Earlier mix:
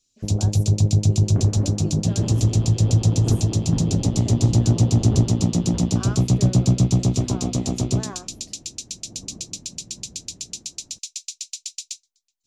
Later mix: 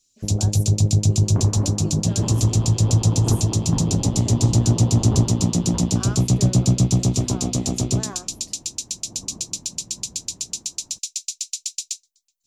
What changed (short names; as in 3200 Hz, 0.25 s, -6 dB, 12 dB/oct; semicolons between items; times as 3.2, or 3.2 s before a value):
second sound: add bell 990 Hz +10 dB 0.65 oct; master: add high shelf 7100 Hz +10.5 dB